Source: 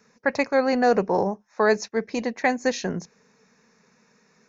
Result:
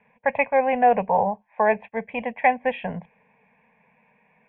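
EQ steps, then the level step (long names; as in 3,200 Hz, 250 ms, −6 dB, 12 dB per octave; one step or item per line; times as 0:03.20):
Chebyshev low-pass with heavy ripple 3,400 Hz, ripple 6 dB
phaser with its sweep stopped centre 1,300 Hz, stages 6
+7.0 dB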